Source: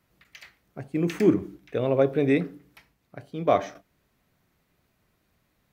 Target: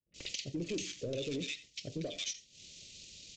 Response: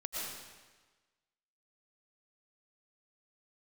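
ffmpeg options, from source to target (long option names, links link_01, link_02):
-filter_complex "[0:a]highshelf=frequency=3300:gain=3.5,atempo=1.7,aexciter=amount=10.1:drive=3.1:freq=2300,asplit=2[link_01][link_02];[link_02]aeval=exprs='(mod(7.08*val(0)+1,2)-1)/7.08':channel_layout=same,volume=-5.5dB[link_03];[link_01][link_03]amix=inputs=2:normalize=0,acrusher=bits=3:mode=log:mix=0:aa=0.000001,acrossover=split=1300[link_04][link_05];[link_05]adelay=140[link_06];[link_04][link_06]amix=inputs=2:normalize=0,acompressor=threshold=-37dB:ratio=8,agate=range=-33dB:threshold=-50dB:ratio=3:detection=peak,aresample=16000,asoftclip=type=tanh:threshold=-34dB,aresample=44100,firequalizer=gain_entry='entry(560,0);entry(820,-20);entry(2800,1)':delay=0.05:min_phase=1[link_07];[1:a]atrim=start_sample=2205,atrim=end_sample=3969[link_08];[link_07][link_08]afir=irnorm=-1:irlink=0,volume=7.5dB"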